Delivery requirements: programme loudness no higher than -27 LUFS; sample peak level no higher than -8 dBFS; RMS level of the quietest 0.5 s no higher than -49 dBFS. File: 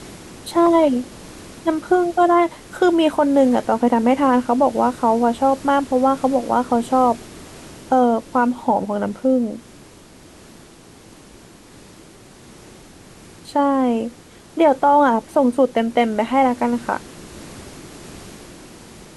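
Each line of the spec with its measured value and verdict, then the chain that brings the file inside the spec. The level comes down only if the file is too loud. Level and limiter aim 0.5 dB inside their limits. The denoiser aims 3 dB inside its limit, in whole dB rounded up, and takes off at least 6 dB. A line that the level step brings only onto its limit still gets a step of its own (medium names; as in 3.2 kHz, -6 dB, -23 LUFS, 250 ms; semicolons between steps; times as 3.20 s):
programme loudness -18.0 LUFS: fail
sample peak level -5.0 dBFS: fail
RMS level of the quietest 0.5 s -44 dBFS: fail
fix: trim -9.5 dB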